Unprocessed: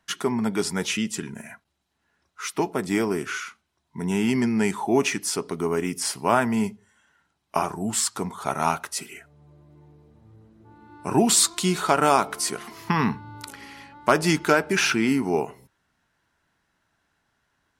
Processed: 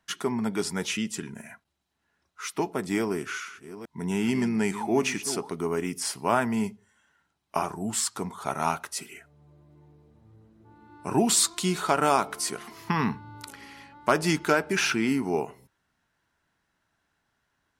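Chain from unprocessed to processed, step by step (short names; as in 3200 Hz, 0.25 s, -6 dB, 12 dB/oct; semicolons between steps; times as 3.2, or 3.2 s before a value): 3–5.49 reverse delay 0.428 s, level -12.5 dB; gain -3.5 dB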